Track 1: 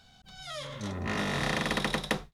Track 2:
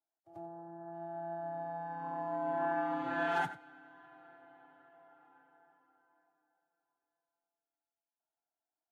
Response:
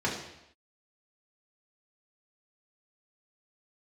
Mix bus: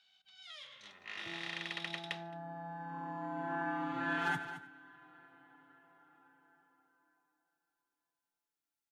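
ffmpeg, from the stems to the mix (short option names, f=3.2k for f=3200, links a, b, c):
-filter_complex "[0:a]bandpass=f=2.9k:t=q:w=1.7:csg=0,volume=-6dB,asplit=3[a][b][c];[b]volume=-22dB[d];[c]volume=-24dB[e];[1:a]equalizer=f=660:w=1.8:g=-12.5,adelay=900,volume=2dB,asplit=2[f][g];[g]volume=-11.5dB[h];[2:a]atrim=start_sample=2205[i];[d][i]afir=irnorm=-1:irlink=0[j];[e][h]amix=inputs=2:normalize=0,aecho=0:1:218:1[k];[a][f][j][k]amix=inputs=4:normalize=0"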